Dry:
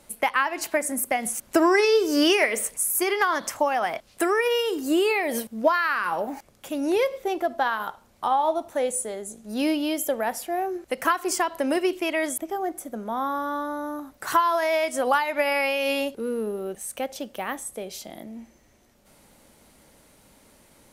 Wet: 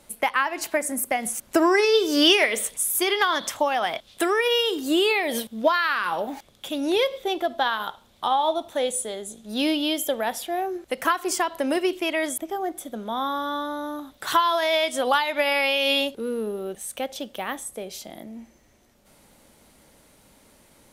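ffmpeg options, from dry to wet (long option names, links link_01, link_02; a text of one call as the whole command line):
ffmpeg -i in.wav -af "asetnsamples=nb_out_samples=441:pad=0,asendcmd='1.94 equalizer g 14;10.61 equalizer g 6;12.77 equalizer g 15;16.07 equalizer g 7.5;17.65 equalizer g 1.5',equalizer=frequency=3500:width_type=o:width=0.43:gain=2.5" out.wav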